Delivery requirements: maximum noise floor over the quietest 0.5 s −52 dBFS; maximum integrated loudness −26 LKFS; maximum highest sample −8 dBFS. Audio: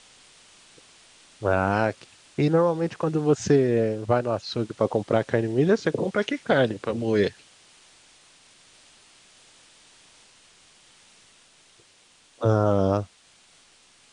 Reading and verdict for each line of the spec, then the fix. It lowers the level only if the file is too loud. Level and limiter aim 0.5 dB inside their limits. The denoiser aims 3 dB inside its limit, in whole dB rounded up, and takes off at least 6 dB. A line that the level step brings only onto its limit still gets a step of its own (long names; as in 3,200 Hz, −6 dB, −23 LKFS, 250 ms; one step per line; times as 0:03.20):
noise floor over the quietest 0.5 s −58 dBFS: in spec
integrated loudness −24.0 LKFS: out of spec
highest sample −7.0 dBFS: out of spec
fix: level −2.5 dB